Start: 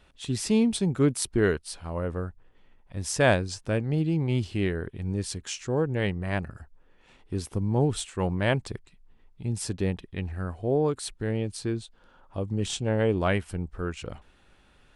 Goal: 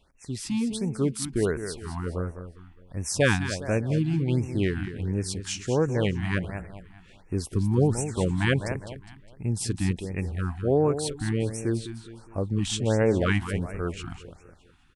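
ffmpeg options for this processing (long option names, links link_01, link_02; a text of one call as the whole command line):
ffmpeg -i in.wav -af "dynaudnorm=framelen=640:gausssize=5:maxgain=7dB,aecho=1:1:205|410|615|820:0.299|0.122|0.0502|0.0206,afftfilt=real='re*(1-between(b*sr/1024,460*pow(4000/460,0.5+0.5*sin(2*PI*1.4*pts/sr))/1.41,460*pow(4000/460,0.5+0.5*sin(2*PI*1.4*pts/sr))*1.41))':imag='im*(1-between(b*sr/1024,460*pow(4000/460,0.5+0.5*sin(2*PI*1.4*pts/sr))/1.41,460*pow(4000/460,0.5+0.5*sin(2*PI*1.4*pts/sr))*1.41))':win_size=1024:overlap=0.75,volume=-4.5dB" out.wav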